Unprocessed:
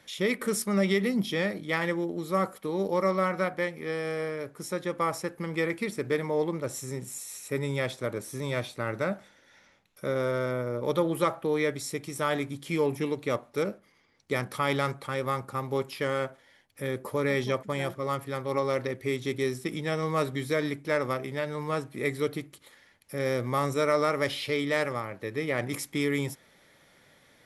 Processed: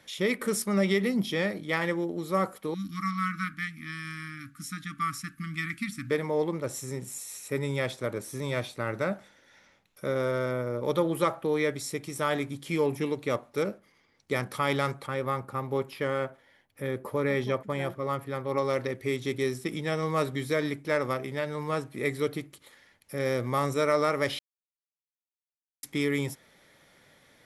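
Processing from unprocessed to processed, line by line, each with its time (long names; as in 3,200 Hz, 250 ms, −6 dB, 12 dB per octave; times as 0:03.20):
0:02.74–0:06.11: linear-phase brick-wall band-stop 310–1,100 Hz
0:15.06–0:18.58: parametric band 6,700 Hz −7.5 dB 1.9 octaves
0:24.39–0:25.83: silence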